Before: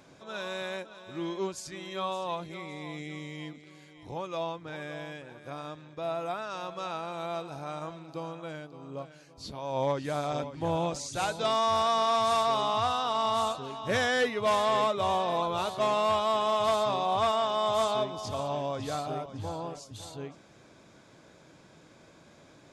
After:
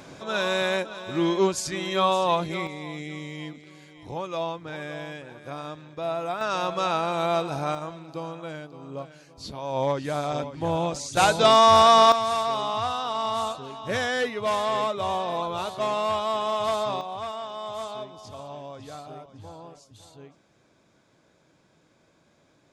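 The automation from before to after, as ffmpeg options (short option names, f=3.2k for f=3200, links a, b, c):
-af "asetnsamples=n=441:p=0,asendcmd='2.67 volume volume 4dB;6.41 volume volume 10.5dB;7.75 volume volume 3.5dB;11.17 volume volume 11dB;12.12 volume volume 0.5dB;17.01 volume volume -7dB',volume=11dB"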